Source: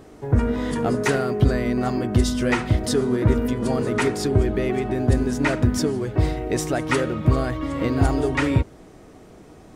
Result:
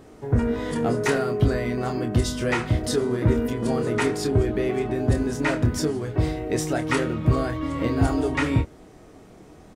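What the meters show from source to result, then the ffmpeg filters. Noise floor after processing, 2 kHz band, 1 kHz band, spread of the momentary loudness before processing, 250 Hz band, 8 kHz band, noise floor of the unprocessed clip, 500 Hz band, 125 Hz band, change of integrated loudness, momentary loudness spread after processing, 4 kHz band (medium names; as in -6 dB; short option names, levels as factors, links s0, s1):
-48 dBFS, -1.5 dB, -2.0 dB, 4 LU, -2.0 dB, -1.5 dB, -46 dBFS, -1.5 dB, -2.0 dB, -2.0 dB, 3 LU, -1.5 dB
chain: -filter_complex "[0:a]asplit=2[s0][s1];[s1]adelay=26,volume=0.473[s2];[s0][s2]amix=inputs=2:normalize=0,volume=0.75"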